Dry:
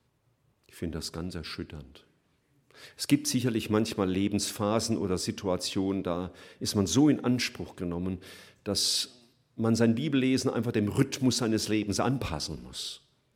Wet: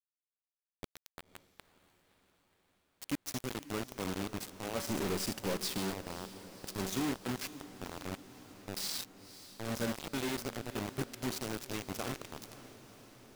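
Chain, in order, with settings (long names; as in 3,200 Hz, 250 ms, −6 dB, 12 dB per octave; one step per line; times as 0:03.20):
0:04.87–0:05.78: leveller curve on the samples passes 2
tuned comb filter 190 Hz, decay 0.76 s, harmonics all, mix 80%
bit-depth reduction 6 bits, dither none
feedback delay with all-pass diffusion 537 ms, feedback 65%, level −15 dB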